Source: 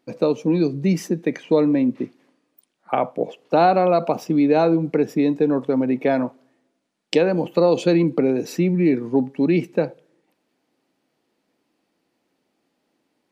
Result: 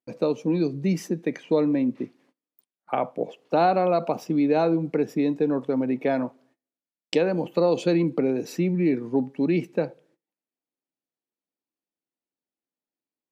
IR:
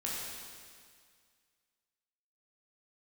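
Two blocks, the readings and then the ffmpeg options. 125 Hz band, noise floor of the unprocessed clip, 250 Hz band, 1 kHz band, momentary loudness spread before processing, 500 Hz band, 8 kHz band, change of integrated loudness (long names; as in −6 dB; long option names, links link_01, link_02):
−4.5 dB, −73 dBFS, −4.5 dB, −4.5 dB, 8 LU, −4.5 dB, can't be measured, −4.5 dB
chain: -af "agate=range=-22dB:threshold=-55dB:ratio=16:detection=peak,volume=-4.5dB"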